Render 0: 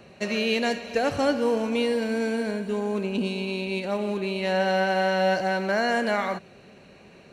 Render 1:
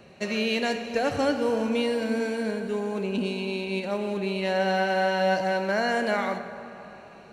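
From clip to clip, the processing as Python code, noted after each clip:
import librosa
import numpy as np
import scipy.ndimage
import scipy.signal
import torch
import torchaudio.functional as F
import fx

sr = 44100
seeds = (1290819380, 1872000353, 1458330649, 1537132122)

y = fx.rev_plate(x, sr, seeds[0], rt60_s=3.4, hf_ratio=0.45, predelay_ms=0, drr_db=9.0)
y = y * librosa.db_to_amplitude(-1.5)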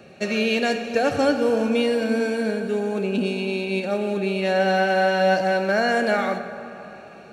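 y = fx.notch_comb(x, sr, f0_hz=1000.0)
y = y * librosa.db_to_amplitude(5.0)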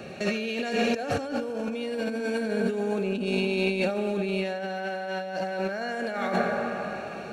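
y = fx.over_compress(x, sr, threshold_db=-29.0, ratio=-1.0)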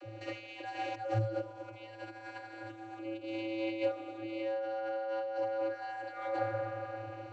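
y = fx.vocoder(x, sr, bands=32, carrier='square', carrier_hz=110.0)
y = y * librosa.db_to_amplitude(-8.0)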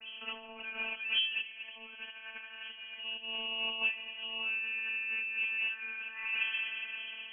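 y = fx.freq_invert(x, sr, carrier_hz=3200)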